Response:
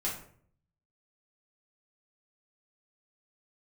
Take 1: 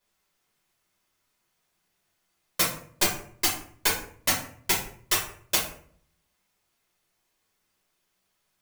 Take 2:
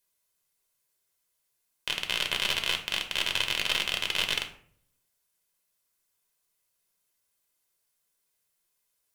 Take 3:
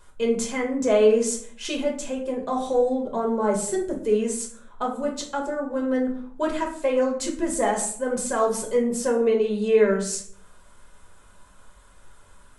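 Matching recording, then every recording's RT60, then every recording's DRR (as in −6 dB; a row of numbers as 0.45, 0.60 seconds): 1; 0.55, 0.55, 0.55 seconds; −6.0, 4.0, −0.5 decibels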